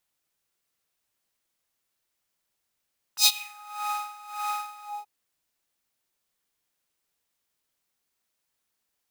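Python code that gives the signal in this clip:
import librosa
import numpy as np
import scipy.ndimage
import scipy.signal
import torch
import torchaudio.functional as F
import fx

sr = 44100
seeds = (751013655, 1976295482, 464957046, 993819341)

y = fx.sub_patch_tremolo(sr, seeds[0], note=80, wave='triangle', wave2='saw', interval_st=7, detune_cents=16, level2_db=-10.0, sub_db=-26.0, noise_db=-14.5, kind='highpass', cutoff_hz=490.0, q=2.8, env_oct=3.5, env_decay_s=0.42, env_sustain_pct=40, attack_ms=80.0, decay_s=0.06, sustain_db=-23.5, release_s=0.22, note_s=1.66, lfo_hz=1.7, tremolo_db=17.5)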